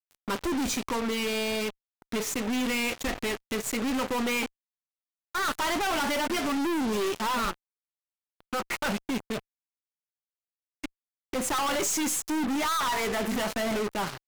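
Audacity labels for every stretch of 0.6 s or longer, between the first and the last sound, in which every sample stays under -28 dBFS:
4.460000	5.350000	silence
7.510000	8.530000	silence
9.390000	10.840000	silence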